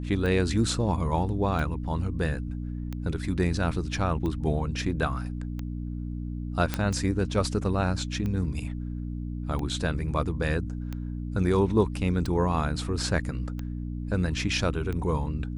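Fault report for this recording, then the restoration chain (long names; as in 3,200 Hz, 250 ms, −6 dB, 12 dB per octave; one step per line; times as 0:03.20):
mains hum 60 Hz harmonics 5 −33 dBFS
scratch tick 45 rpm −21 dBFS
0:06.74: click −11 dBFS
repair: click removal
hum removal 60 Hz, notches 5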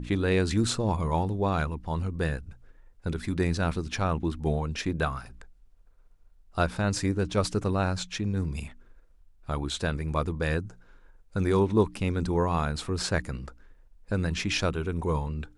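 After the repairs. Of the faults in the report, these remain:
none of them is left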